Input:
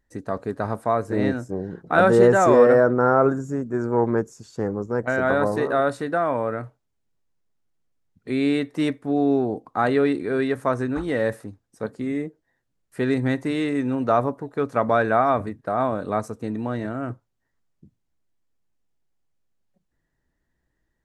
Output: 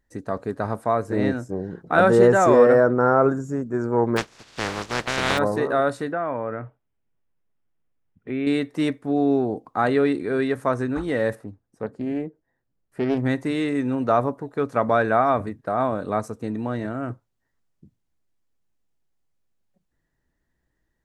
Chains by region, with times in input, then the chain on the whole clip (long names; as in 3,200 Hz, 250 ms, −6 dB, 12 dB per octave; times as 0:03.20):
0:04.16–0:05.37: compressing power law on the bin magnitudes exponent 0.22 + low-pass filter 4,000 Hz + upward compression, threshold −43 dBFS
0:06.12–0:08.47: downward compressor 1.5 to 1, threshold −28 dBFS + Savitzky-Golay smoothing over 25 samples
0:11.35–0:13.25: high-shelf EQ 2,100 Hz −12 dB + highs frequency-modulated by the lows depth 0.29 ms
whole clip: no processing